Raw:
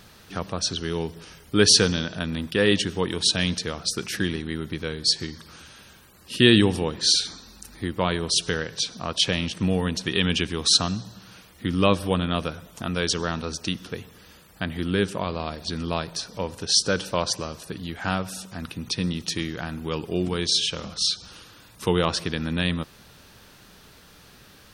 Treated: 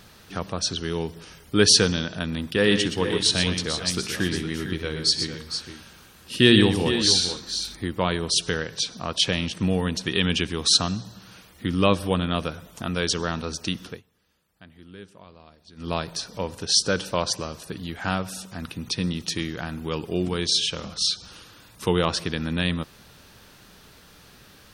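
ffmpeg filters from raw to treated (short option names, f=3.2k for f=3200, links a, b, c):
-filter_complex "[0:a]asettb=1/sr,asplit=3[a][b][c];[a]atrim=end=2.434[d];[b]atrim=start=2.43:end=7.76,asetpts=PTS-STARTPTS,afade=t=in:d=0.004:c=qsin,afade=t=out:st=5.326:d=0.004:c=qsin,aecho=1:1:64|121|457|479:0.133|0.398|0.316|0.141,atrim=end_sample=235053[e];[c]atrim=start=7.756[f];[d][e]acrossfade=d=0.004:c1=hsin:c2=qsin[g];[g][f]acrossfade=d=0.004:c1=qsin:c2=hsin,asplit=3[h][i][j];[h]atrim=end=14.02,asetpts=PTS-STARTPTS,afade=t=out:st=13.87:d=0.15:silence=0.1[k];[i]atrim=start=14.02:end=15.76,asetpts=PTS-STARTPTS,volume=-20dB[l];[j]atrim=start=15.76,asetpts=PTS-STARTPTS,afade=t=in:d=0.15:silence=0.1[m];[k][l][m]concat=n=3:v=0:a=1"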